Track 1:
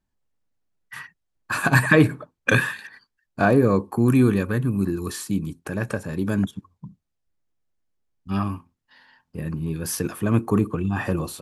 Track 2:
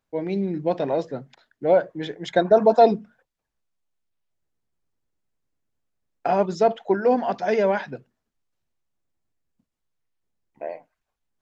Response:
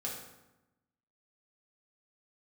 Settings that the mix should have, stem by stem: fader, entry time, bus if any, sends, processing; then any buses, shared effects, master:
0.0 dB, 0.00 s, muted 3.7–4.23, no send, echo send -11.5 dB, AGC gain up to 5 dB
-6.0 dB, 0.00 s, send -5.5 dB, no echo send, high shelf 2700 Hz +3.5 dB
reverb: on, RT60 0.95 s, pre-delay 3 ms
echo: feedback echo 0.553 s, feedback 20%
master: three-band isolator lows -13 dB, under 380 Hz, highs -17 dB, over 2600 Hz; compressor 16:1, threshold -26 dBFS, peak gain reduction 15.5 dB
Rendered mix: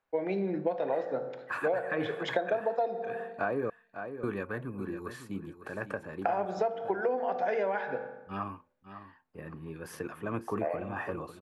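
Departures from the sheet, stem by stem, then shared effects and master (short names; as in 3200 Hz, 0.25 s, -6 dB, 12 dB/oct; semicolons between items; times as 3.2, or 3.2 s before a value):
stem 1 0.0 dB -> -10.0 dB; stem 2 -6.0 dB -> 0.0 dB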